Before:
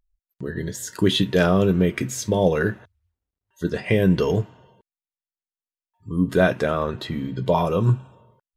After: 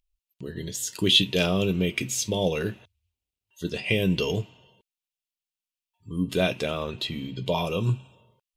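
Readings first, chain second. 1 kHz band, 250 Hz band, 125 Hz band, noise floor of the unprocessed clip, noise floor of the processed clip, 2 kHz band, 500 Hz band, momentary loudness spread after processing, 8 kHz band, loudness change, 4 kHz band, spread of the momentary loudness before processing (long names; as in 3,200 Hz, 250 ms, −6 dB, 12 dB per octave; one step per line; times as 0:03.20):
−8.0 dB, −6.0 dB, −6.0 dB, below −85 dBFS, below −85 dBFS, −3.5 dB, −6.5 dB, 14 LU, +2.0 dB, −4.0 dB, +5.5 dB, 12 LU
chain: high shelf with overshoot 2,100 Hz +7.5 dB, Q 3
level −6 dB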